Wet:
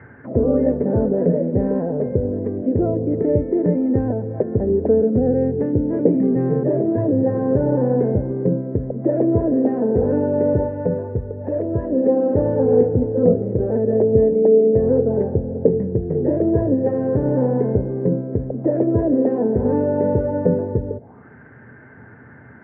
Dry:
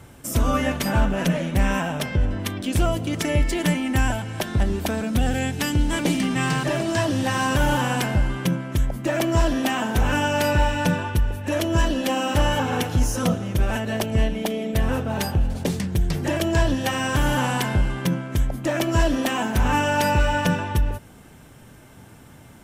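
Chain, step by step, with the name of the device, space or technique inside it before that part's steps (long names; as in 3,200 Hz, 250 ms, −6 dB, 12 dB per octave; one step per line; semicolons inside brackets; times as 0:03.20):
high-pass filter 73 Hz 12 dB per octave
envelope filter bass rig (envelope-controlled low-pass 480–1,800 Hz down, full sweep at −25 dBFS; loudspeaker in its box 71–2,100 Hz, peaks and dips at 78 Hz +5 dB, 120 Hz +6 dB, 240 Hz +6 dB, 430 Hz +8 dB, 1,200 Hz −6 dB, 1,900 Hz +8 dB)
0:10.66–0:11.92: dynamic equaliser 280 Hz, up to −7 dB, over −30 dBFS, Q 0.89
level −1 dB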